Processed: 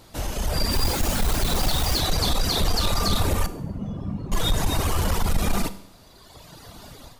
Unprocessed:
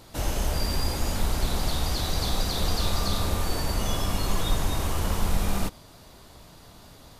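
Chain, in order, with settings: reverb removal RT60 1.9 s; peak limiter -19 dBFS, peak gain reduction 5.5 dB; level rider gain up to 10 dB; 0.71–1.98 s: added noise white -33 dBFS; 3.46–4.32 s: band-pass filter 170 Hz, Q 1.7; saturation -14 dBFS, distortion -16 dB; Schroeder reverb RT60 0.68 s, combs from 32 ms, DRR 13.5 dB

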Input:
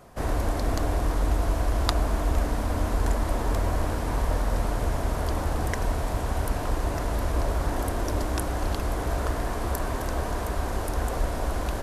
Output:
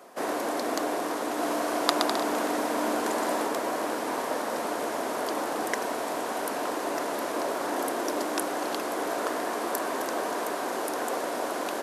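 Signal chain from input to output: high-pass 270 Hz 24 dB/octave; 1.25–3.47 s: bouncing-ball echo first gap 120 ms, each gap 0.7×, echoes 5; trim +2.5 dB

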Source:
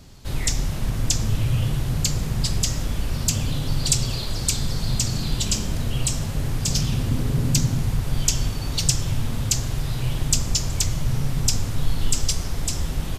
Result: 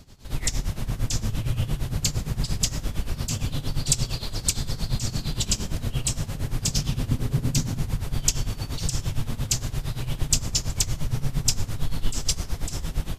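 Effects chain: tremolo 8.7 Hz, depth 82%

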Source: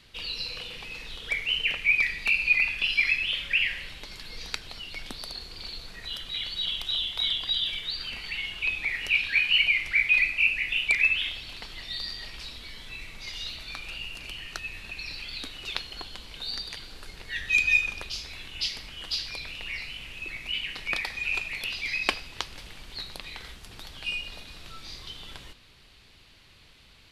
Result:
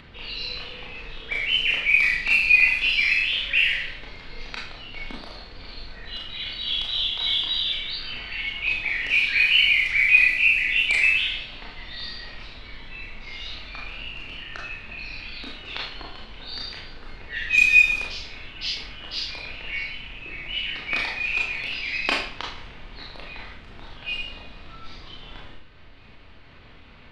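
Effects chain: Schroeder reverb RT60 0.53 s, combs from 25 ms, DRR -3 dB; level-controlled noise filter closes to 1.8 kHz, open at -15 dBFS; upward compressor, threshold -39 dBFS

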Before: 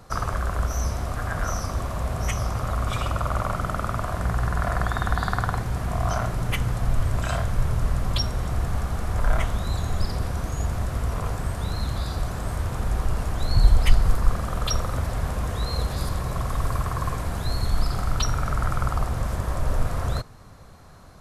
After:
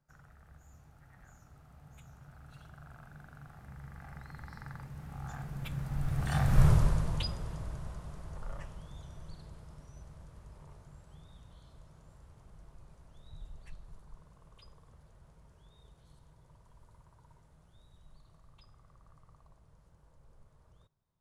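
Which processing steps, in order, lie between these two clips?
Doppler pass-by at 6.66 s, 46 m/s, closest 7.1 m; peaking EQ 150 Hz +11.5 dB 0.32 oct

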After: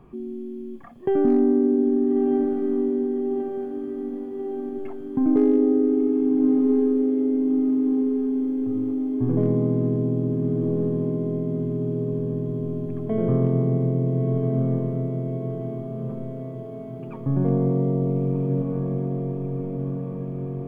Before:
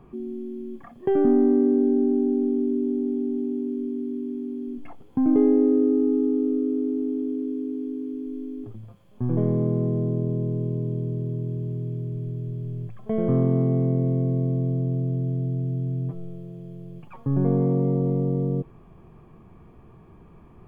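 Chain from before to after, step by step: hard clipper -10.5 dBFS, distortion -44 dB; on a send: echo that smears into a reverb 1339 ms, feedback 65%, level -5 dB

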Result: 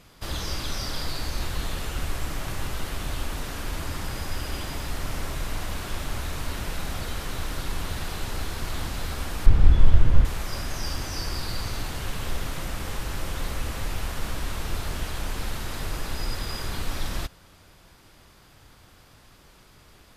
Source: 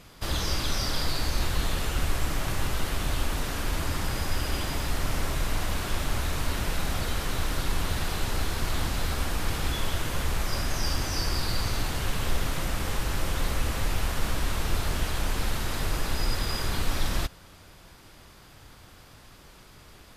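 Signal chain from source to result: 9.46–10.25 s: RIAA curve playback; trim -2.5 dB

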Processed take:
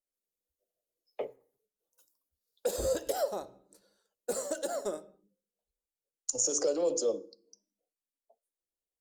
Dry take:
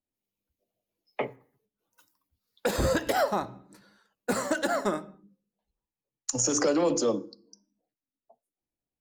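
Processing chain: ten-band graphic EQ 125 Hz -11 dB, 250 Hz -7 dB, 500 Hz +9 dB, 1 kHz -7 dB, 2 kHz -10 dB, 8 kHz +6 dB, 16 kHz +5 dB; trim -7.5 dB

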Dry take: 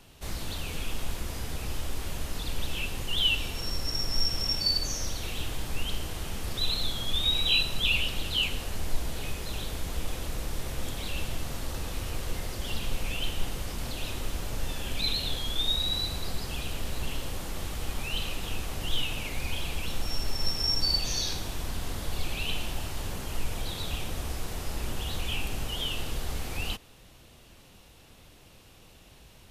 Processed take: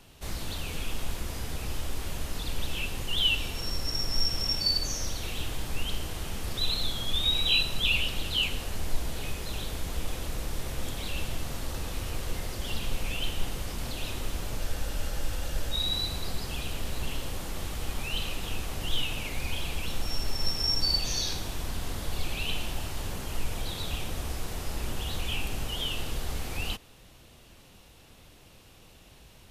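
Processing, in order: spectral freeze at 14.61 s, 1.13 s

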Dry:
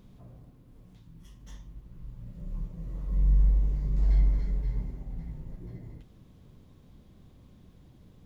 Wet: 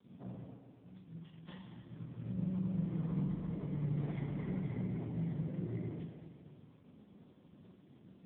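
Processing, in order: dead-time distortion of 0.094 ms; high-pass 150 Hz 12 dB/octave; expander -51 dBFS; compression 2.5:1, threshold -45 dBFS, peak gain reduction 8 dB; spring tank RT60 1.7 s, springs 43/48 ms, chirp 25 ms, DRR 2.5 dB; trim +9 dB; AMR-NB 5.9 kbps 8 kHz

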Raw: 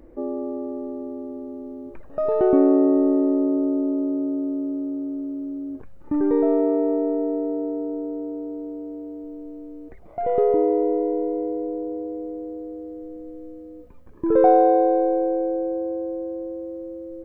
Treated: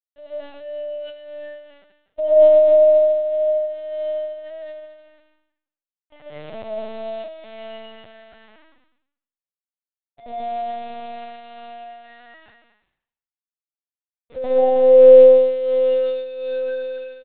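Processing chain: in parallel at -4 dB: saturation -17.5 dBFS, distortion -11 dB; on the sum: resonant high-pass 570 Hz, resonance Q 7; static phaser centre 1.8 kHz, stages 8; bit crusher 4-bit; flange 0.3 Hz, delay 1.7 ms, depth 4.3 ms, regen -13%; on a send: loudspeakers at several distances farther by 17 m -7 dB, 29 m -11 dB, 81 m -10 dB; on the sum: algorithmic reverb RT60 0.69 s, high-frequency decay 1×, pre-delay 85 ms, DRR -5 dB; LPC vocoder at 8 kHz pitch kept; upward expansion 1.5:1, over -22 dBFS; trim -9.5 dB

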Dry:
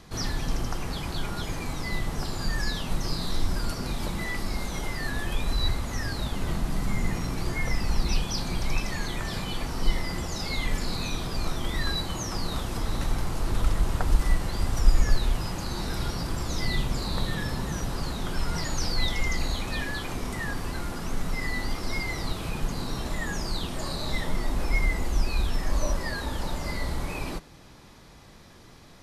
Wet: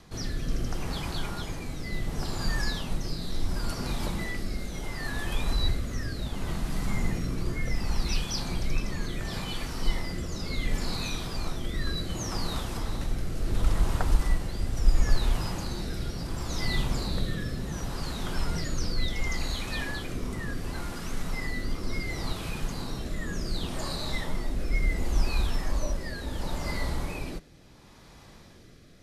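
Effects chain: rotary cabinet horn 0.7 Hz

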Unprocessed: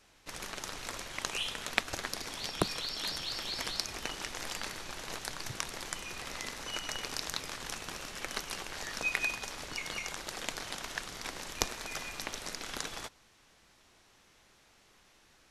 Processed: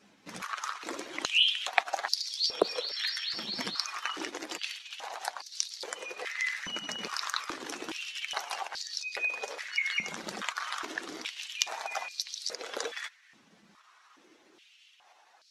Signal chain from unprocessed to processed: spectral contrast enhancement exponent 1.6; step-sequenced high-pass 2.4 Hz 200–4500 Hz; trim +1.5 dB

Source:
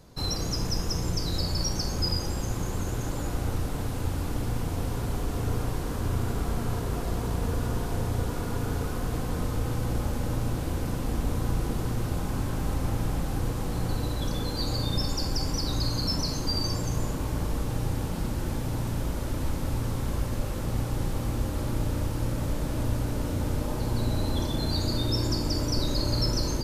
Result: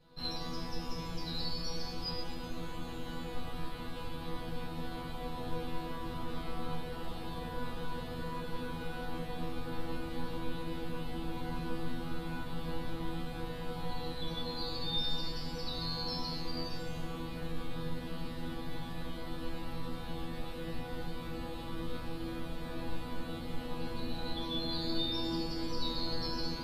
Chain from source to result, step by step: resonant high shelf 4.9 kHz -7.5 dB, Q 3; chord resonator E3 fifth, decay 0.62 s; trim +11 dB

